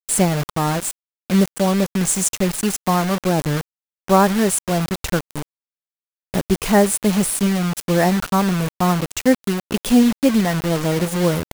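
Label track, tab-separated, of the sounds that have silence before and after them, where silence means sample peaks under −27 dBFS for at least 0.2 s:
1.300000	3.610000	sound
4.080000	5.420000	sound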